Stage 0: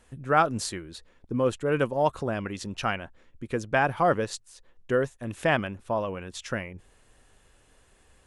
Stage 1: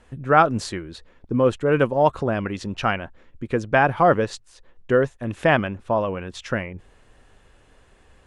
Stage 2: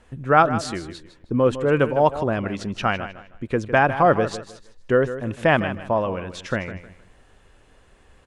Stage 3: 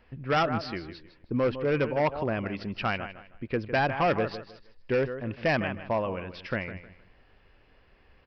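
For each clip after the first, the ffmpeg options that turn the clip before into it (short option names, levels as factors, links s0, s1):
-af "aemphasis=mode=reproduction:type=50fm,volume=2"
-af "aecho=1:1:156|312|468:0.237|0.064|0.0173"
-af "aresample=11025,volume=5.01,asoftclip=hard,volume=0.2,aresample=44100,aexciter=amount=1.5:drive=3.5:freq=2000,volume=0.501"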